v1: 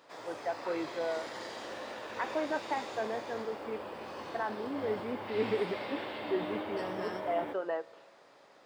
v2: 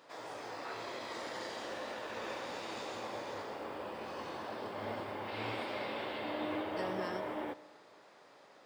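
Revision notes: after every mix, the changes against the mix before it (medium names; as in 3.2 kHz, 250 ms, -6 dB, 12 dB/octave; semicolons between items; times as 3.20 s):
first voice: muted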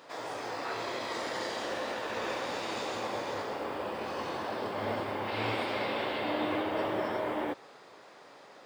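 background +9.0 dB; reverb: off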